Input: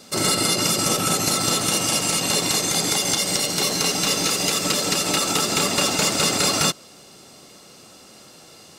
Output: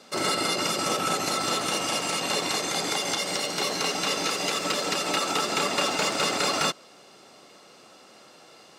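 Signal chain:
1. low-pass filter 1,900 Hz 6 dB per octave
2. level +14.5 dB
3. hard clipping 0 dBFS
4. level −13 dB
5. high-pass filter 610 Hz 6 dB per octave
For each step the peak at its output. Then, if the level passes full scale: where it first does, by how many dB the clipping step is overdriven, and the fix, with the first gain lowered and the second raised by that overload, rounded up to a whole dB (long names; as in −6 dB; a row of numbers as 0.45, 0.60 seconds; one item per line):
−8.0, +6.5, 0.0, −13.0, −11.5 dBFS
step 2, 6.5 dB
step 2 +7.5 dB, step 4 −6 dB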